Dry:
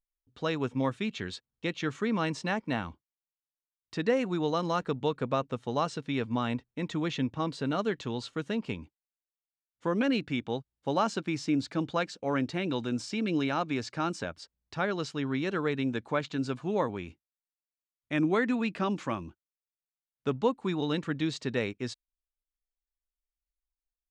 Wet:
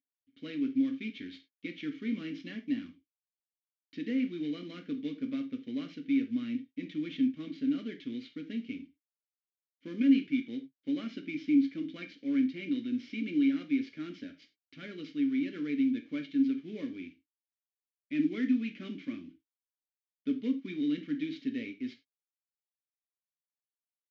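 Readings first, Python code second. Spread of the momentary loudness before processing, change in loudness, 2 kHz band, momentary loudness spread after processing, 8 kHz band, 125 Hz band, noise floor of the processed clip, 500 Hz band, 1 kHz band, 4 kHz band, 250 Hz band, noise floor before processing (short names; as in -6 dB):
8 LU, -1.5 dB, -8.5 dB, 14 LU, under -20 dB, -14.5 dB, under -85 dBFS, -14.5 dB, under -25 dB, -8.5 dB, +1.5 dB, under -85 dBFS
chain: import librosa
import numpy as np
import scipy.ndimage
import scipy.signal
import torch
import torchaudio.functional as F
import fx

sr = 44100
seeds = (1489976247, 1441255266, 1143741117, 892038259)

y = fx.cvsd(x, sr, bps=32000)
y = fx.vowel_filter(y, sr, vowel='i')
y = fx.rev_gated(y, sr, seeds[0], gate_ms=120, shape='falling', drr_db=5.0)
y = y * 10.0 ** (4.0 / 20.0)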